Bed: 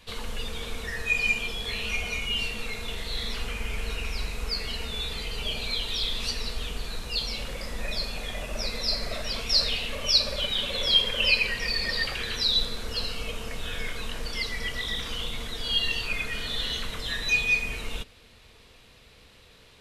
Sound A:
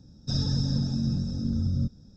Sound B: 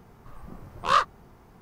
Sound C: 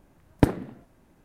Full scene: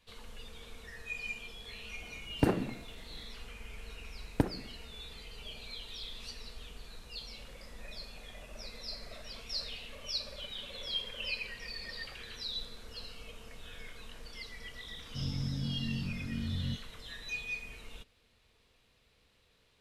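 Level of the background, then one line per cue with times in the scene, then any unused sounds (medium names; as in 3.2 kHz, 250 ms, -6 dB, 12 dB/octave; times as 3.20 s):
bed -15 dB
2.00 s: add C -13 dB + loudness maximiser +15 dB
3.97 s: add C -9.5 dB
14.87 s: add A -12.5 dB + doubling 22 ms -5 dB
not used: B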